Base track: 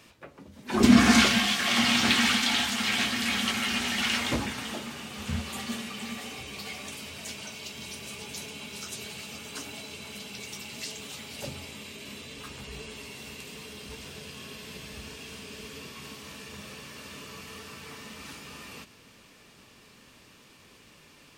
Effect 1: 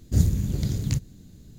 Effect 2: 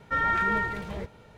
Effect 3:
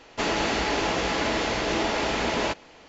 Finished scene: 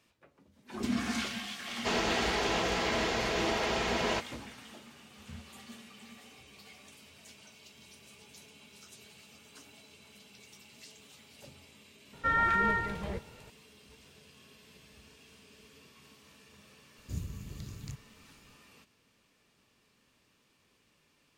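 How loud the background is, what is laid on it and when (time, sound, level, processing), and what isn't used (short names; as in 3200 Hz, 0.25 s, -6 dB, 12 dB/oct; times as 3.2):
base track -15 dB
1.67 add 3 -4 dB + notch comb 290 Hz
12.13 add 2 -2 dB
16.97 add 1 -18 dB + mismatched tape noise reduction encoder only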